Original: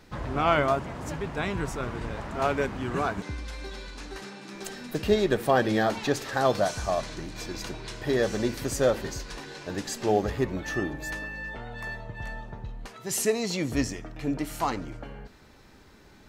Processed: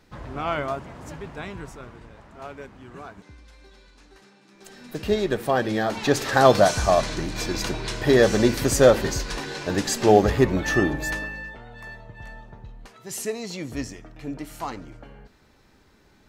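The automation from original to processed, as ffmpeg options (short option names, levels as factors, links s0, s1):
-af "volume=7.08,afade=t=out:st=1.26:d=0.82:silence=0.375837,afade=t=in:st=4.57:d=0.53:silence=0.237137,afade=t=in:st=5.88:d=0.41:silence=0.375837,afade=t=out:st=10.92:d=0.65:silence=0.237137"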